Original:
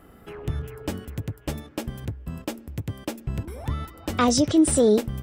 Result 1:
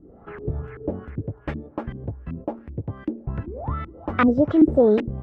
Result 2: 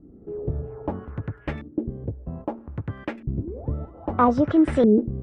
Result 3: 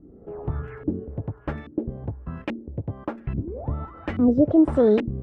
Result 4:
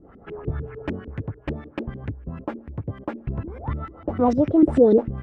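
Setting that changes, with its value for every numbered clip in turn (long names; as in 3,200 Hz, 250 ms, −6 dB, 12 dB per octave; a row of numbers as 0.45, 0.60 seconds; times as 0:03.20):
auto-filter low-pass, speed: 2.6, 0.62, 1.2, 6.7 Hertz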